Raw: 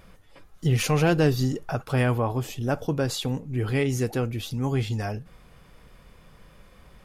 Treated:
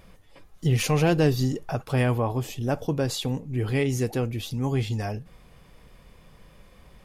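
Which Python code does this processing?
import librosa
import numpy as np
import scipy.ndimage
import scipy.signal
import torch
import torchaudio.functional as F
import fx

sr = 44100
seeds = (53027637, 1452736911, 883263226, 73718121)

y = fx.peak_eq(x, sr, hz=1400.0, db=-5.0, octaves=0.4)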